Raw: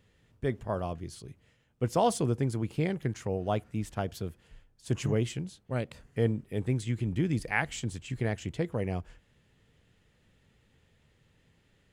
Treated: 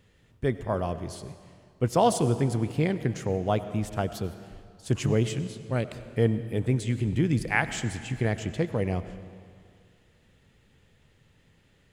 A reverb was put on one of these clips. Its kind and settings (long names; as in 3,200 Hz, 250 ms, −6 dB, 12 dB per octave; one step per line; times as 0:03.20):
comb and all-pass reverb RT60 2.2 s, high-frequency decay 0.85×, pre-delay 55 ms, DRR 12 dB
level +4 dB